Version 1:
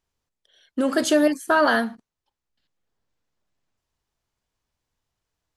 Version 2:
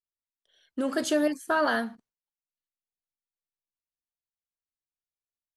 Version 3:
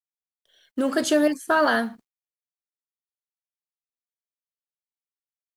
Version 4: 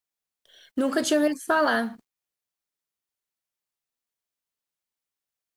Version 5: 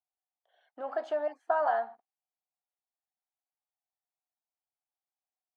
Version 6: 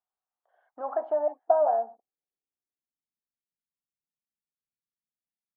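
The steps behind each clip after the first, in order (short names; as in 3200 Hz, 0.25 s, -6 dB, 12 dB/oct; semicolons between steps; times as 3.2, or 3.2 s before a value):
gate with hold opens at -55 dBFS; gain -6.5 dB
companded quantiser 8-bit; gain +5 dB
compressor 1.5:1, threshold -41 dBFS, peak gain reduction 9.5 dB; gain +6.5 dB
ladder band-pass 800 Hz, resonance 75%; gain +2.5 dB
low-pass sweep 1200 Hz -> 200 Hz, 0.63–3.47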